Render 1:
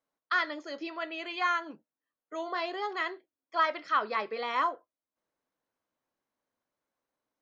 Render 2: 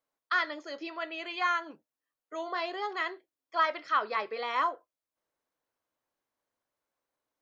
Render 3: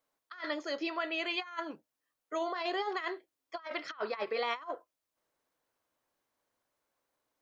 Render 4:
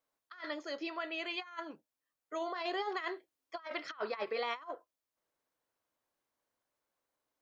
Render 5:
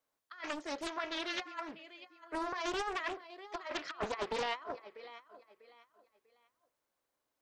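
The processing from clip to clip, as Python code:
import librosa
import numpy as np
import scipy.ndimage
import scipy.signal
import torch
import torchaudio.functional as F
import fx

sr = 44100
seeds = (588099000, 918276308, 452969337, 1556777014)

y1 = fx.peak_eq(x, sr, hz=210.0, db=-6.0, octaves=0.94)
y2 = fx.over_compress(y1, sr, threshold_db=-35.0, ratio=-0.5)
y2 = fx.end_taper(y2, sr, db_per_s=490.0)
y3 = fx.rider(y2, sr, range_db=10, speed_s=2.0)
y3 = y3 * 10.0 ** (-3.5 / 20.0)
y4 = fx.echo_feedback(y3, sr, ms=645, feedback_pct=29, wet_db=-15.5)
y4 = fx.doppler_dist(y4, sr, depth_ms=0.71)
y4 = y4 * 10.0 ** (1.0 / 20.0)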